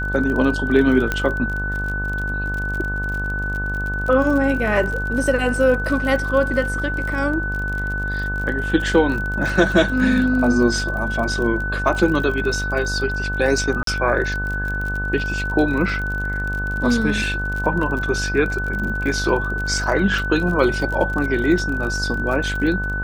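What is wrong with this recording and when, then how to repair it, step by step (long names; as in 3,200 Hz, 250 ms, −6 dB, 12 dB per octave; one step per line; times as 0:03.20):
mains buzz 50 Hz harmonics 31 −26 dBFS
surface crackle 40 per second −26 dBFS
whistle 1,500 Hz −24 dBFS
0:01.12: click −7 dBFS
0:13.83–0:13.87: drop-out 43 ms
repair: click removal
hum removal 50 Hz, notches 31
notch filter 1,500 Hz, Q 30
repair the gap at 0:13.83, 43 ms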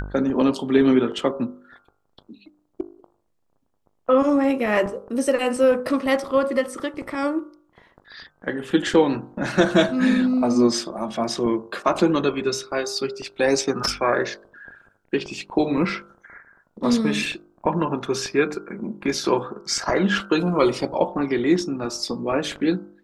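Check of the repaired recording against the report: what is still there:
none of them is left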